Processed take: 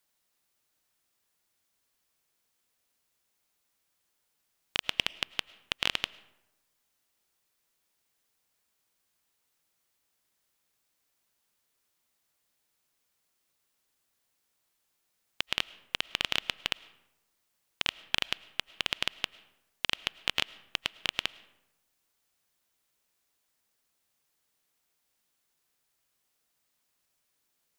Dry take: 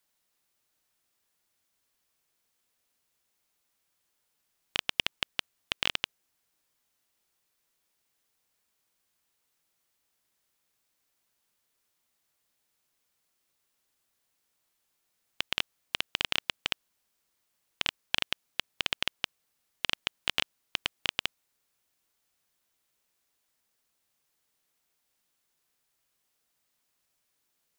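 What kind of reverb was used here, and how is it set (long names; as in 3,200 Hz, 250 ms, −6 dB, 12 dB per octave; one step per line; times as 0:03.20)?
comb and all-pass reverb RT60 0.94 s, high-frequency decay 0.55×, pre-delay 65 ms, DRR 20 dB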